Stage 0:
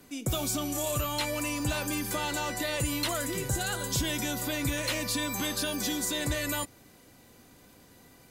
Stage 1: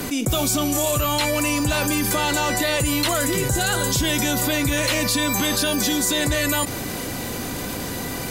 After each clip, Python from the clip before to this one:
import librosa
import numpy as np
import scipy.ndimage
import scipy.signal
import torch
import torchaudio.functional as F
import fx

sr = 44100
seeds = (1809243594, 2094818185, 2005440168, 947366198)

y = fx.env_flatten(x, sr, amount_pct=70)
y = F.gain(torch.from_numpy(y), 6.5).numpy()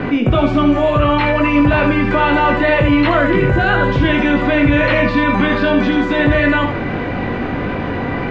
y = scipy.signal.sosfilt(scipy.signal.butter(4, 2400.0, 'lowpass', fs=sr, output='sos'), x)
y = fx.room_early_taps(y, sr, ms=(21, 79), db=(-5.5, -7.0))
y = F.gain(torch.from_numpy(y), 8.0).numpy()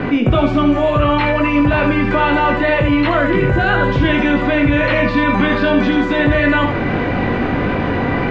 y = fx.rider(x, sr, range_db=3, speed_s=0.5)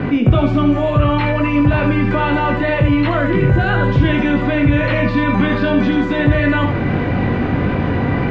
y = fx.peak_eq(x, sr, hz=110.0, db=8.0, octaves=2.2)
y = F.gain(torch.from_numpy(y), -3.5).numpy()